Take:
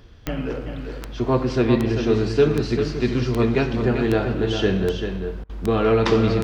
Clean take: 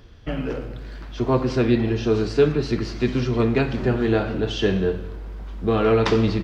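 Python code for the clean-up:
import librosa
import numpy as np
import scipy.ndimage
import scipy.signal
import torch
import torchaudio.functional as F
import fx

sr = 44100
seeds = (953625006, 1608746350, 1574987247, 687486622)

y = fx.fix_declick_ar(x, sr, threshold=10.0)
y = fx.fix_interpolate(y, sr, at_s=(5.44,), length_ms=53.0)
y = fx.fix_echo_inverse(y, sr, delay_ms=392, level_db=-7.0)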